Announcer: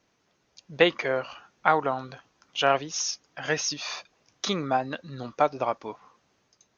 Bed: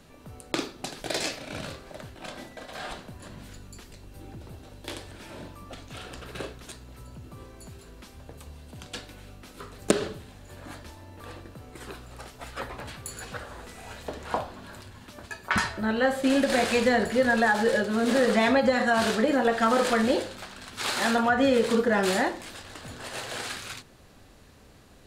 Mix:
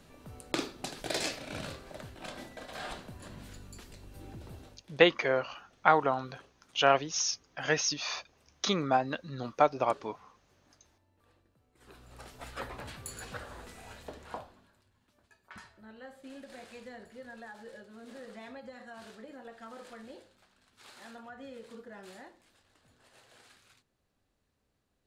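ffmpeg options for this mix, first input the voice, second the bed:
-filter_complex "[0:a]adelay=4200,volume=-1.5dB[a];[1:a]volume=17.5dB,afade=t=out:st=4.61:d=0.23:silence=0.0794328,afade=t=in:st=11.75:d=0.61:silence=0.0891251,afade=t=out:st=13.59:d=1.14:silence=0.0944061[b];[a][b]amix=inputs=2:normalize=0"

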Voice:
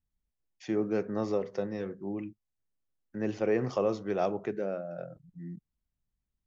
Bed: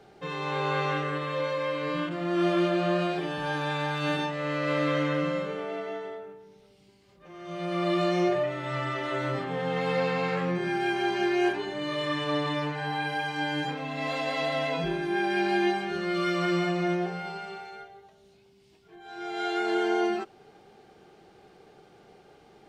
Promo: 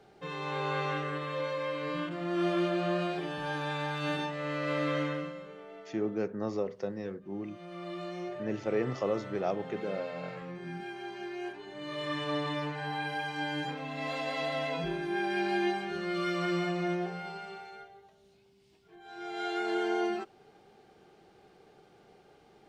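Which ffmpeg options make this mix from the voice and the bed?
-filter_complex "[0:a]adelay=5250,volume=-2.5dB[a];[1:a]volume=5dB,afade=t=out:st=5.02:d=0.32:silence=0.334965,afade=t=in:st=11.6:d=0.56:silence=0.334965[b];[a][b]amix=inputs=2:normalize=0"

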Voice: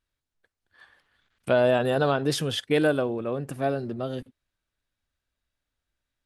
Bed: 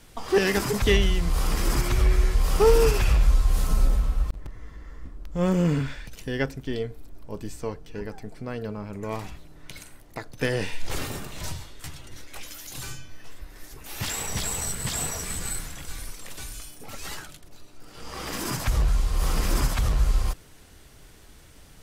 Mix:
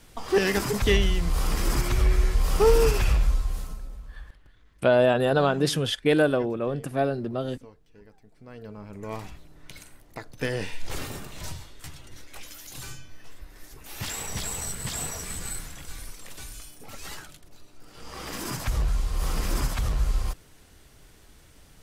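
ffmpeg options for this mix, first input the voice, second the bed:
-filter_complex "[0:a]adelay=3350,volume=1.5dB[a];[1:a]volume=14dB,afade=t=out:st=3.07:d=0.73:silence=0.141254,afade=t=in:st=8.3:d=0.85:silence=0.177828[b];[a][b]amix=inputs=2:normalize=0"

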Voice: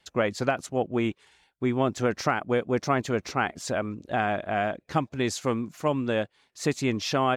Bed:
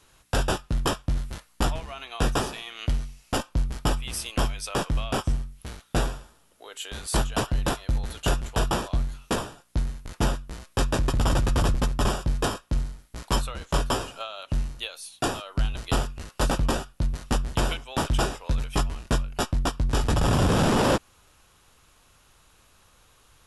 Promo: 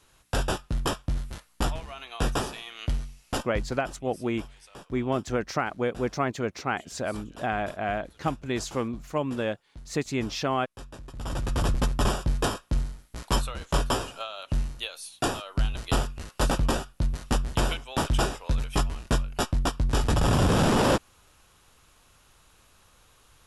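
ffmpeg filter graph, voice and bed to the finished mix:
-filter_complex "[0:a]adelay=3300,volume=-2.5dB[a];[1:a]volume=16.5dB,afade=t=out:st=3.3:d=0.54:silence=0.141254,afade=t=in:st=11.12:d=0.7:silence=0.112202[b];[a][b]amix=inputs=2:normalize=0"

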